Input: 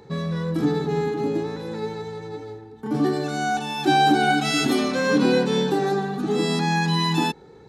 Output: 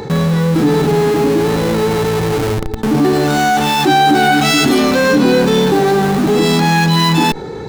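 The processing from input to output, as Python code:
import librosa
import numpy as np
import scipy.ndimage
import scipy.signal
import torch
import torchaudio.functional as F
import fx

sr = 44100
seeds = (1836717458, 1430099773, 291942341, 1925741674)

p1 = fx.schmitt(x, sr, flips_db=-36.0)
p2 = x + (p1 * librosa.db_to_amplitude(-7.0))
p3 = fx.env_flatten(p2, sr, amount_pct=50)
y = p3 * librosa.db_to_amplitude(4.5)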